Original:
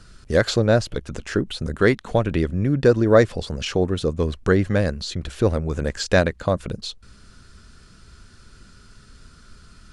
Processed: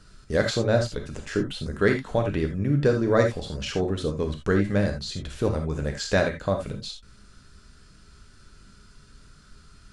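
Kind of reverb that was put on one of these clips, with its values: gated-style reverb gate 100 ms flat, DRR 3 dB; trim -5.5 dB

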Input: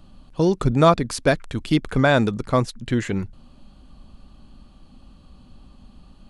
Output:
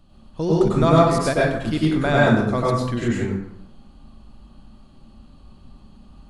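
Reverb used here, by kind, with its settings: plate-style reverb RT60 0.8 s, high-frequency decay 0.55×, pre-delay 85 ms, DRR -6 dB; trim -6 dB

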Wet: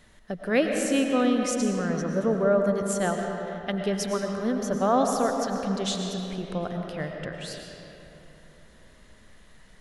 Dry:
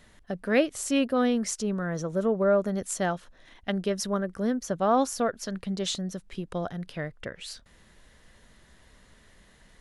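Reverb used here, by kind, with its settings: algorithmic reverb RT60 3.3 s, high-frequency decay 0.55×, pre-delay 70 ms, DRR 2.5 dB

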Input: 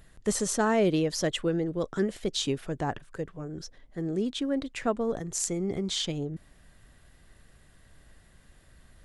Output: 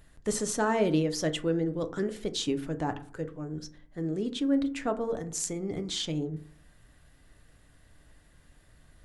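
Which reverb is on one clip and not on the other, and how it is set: FDN reverb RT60 0.49 s, low-frequency decay 1.3×, high-frequency decay 0.4×, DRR 7.5 dB; trim -2.5 dB

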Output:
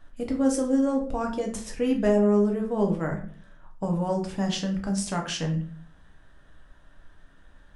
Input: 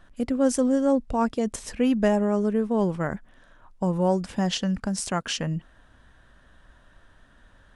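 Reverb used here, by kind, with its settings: simulated room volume 43 m³, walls mixed, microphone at 0.57 m; trim -4.5 dB

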